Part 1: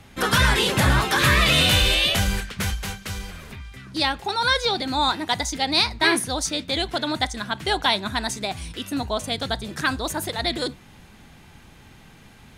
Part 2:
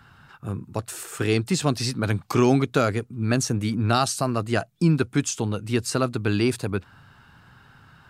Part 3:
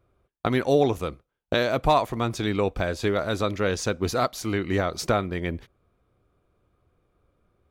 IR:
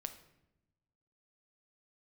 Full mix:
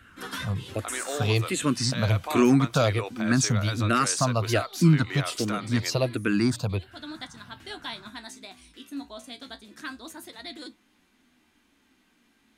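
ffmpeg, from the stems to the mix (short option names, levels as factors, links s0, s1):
-filter_complex "[0:a]equalizer=f=490:t=o:w=1.3:g=-7,flanger=delay=9.1:depth=9.2:regen=51:speed=0.28:shape=triangular,volume=0.316[s0];[1:a]equalizer=f=410:w=5.3:g=-8,asplit=2[s1][s2];[s2]afreqshift=-1.3[s3];[s1][s3]amix=inputs=2:normalize=1,volume=1.33,asplit=2[s4][s5];[2:a]highpass=1000,adelay=400,volume=1[s6];[s5]apad=whole_len=554670[s7];[s0][s7]sidechaincompress=threshold=0.00891:ratio=4:attack=16:release=209[s8];[s8][s6]amix=inputs=2:normalize=0,lowshelf=f=190:t=q:w=3:g=-11.5,alimiter=limit=0.0841:level=0:latency=1:release=90,volume=1[s9];[s4][s9]amix=inputs=2:normalize=0,bandreject=f=820:w=13"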